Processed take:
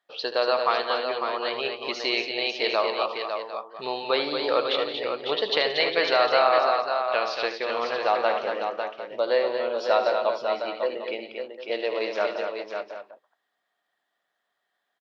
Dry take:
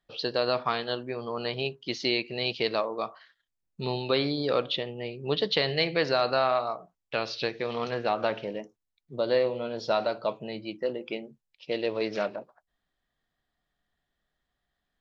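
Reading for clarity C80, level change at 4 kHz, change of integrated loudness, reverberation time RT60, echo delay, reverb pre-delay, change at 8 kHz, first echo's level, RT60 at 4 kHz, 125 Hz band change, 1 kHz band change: none, +3.5 dB, +4.0 dB, none, 76 ms, none, n/a, -11.5 dB, none, under -15 dB, +7.0 dB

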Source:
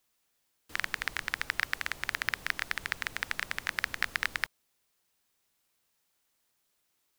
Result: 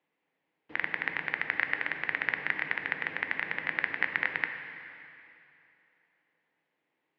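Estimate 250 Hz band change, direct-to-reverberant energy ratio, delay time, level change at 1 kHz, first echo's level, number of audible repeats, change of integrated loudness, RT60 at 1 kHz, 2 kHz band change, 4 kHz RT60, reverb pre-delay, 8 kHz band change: +6.0 dB, 5.5 dB, none, +0.5 dB, none, none, +2.0 dB, 2.8 s, +3.0 dB, 2.6 s, 6 ms, under -30 dB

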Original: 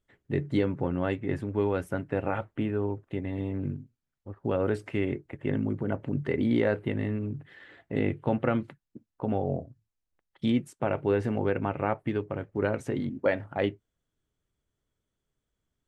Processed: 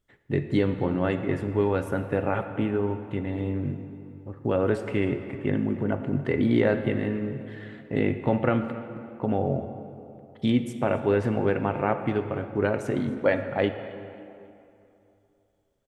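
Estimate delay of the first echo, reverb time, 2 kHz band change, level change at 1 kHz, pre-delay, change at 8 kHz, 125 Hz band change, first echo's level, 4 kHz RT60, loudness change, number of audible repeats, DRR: 0.271 s, 2.8 s, +3.5 dB, +3.5 dB, 10 ms, n/a, +3.0 dB, -20.0 dB, 1.7 s, +3.5 dB, 3, 7.5 dB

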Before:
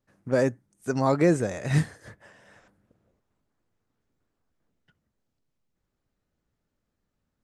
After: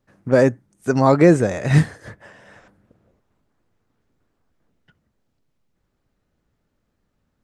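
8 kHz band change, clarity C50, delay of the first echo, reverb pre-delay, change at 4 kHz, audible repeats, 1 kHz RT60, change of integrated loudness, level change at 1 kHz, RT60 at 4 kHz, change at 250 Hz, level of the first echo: +4.0 dB, none, none, none, +6.0 dB, none, none, +8.0 dB, +8.5 dB, none, +8.5 dB, none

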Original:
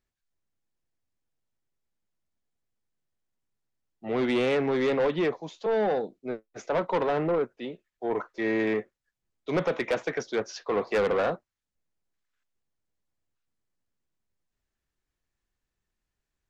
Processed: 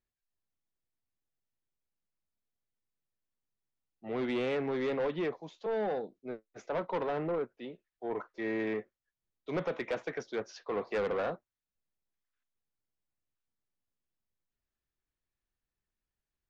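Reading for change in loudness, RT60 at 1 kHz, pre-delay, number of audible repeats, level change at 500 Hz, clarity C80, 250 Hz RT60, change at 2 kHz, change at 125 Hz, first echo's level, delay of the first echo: -7.0 dB, none, none, none, -7.0 dB, none, none, -7.5 dB, -7.0 dB, none, none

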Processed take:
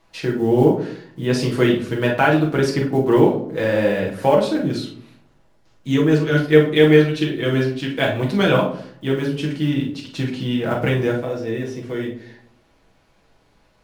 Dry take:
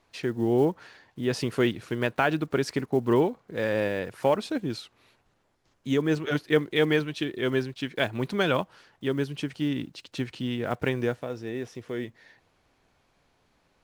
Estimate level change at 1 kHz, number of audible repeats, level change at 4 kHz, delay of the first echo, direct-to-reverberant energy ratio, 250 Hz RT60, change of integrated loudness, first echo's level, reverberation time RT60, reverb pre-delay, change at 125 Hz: +8.0 dB, none, +6.5 dB, none, -2.5 dB, 0.80 s, +9.0 dB, none, 0.60 s, 6 ms, +11.0 dB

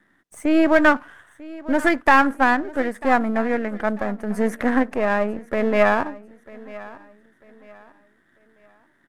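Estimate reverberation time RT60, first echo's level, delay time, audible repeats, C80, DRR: none, -19.5 dB, 0.945 s, 2, none, none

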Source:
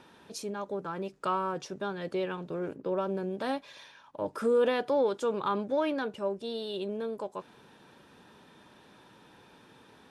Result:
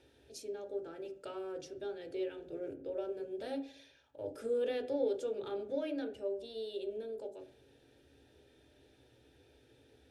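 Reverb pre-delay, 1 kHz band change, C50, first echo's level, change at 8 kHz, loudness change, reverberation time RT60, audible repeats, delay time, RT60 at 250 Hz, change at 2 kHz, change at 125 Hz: 19 ms, -17.5 dB, 16.5 dB, none, n/a, -7.5 dB, 0.55 s, none, none, 0.50 s, -13.0 dB, under -15 dB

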